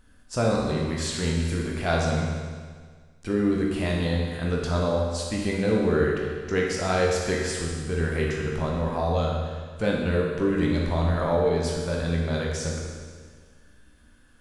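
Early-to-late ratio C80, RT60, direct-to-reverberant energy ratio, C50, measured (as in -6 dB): 2.5 dB, 1.7 s, -2.5 dB, 0.5 dB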